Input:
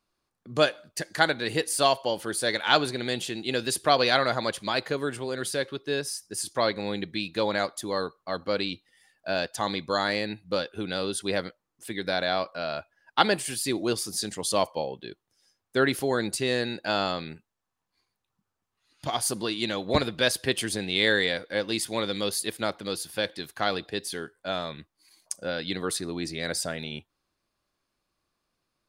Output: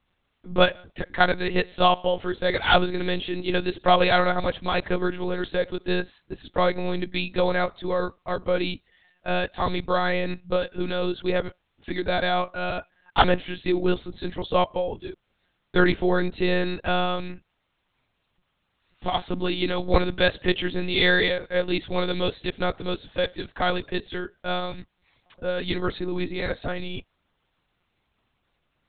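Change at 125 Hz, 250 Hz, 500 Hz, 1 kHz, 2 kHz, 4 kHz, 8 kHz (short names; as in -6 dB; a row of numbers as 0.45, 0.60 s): +6.0 dB, +4.5 dB, +3.5 dB, +4.0 dB, +2.5 dB, -0.5 dB, under -40 dB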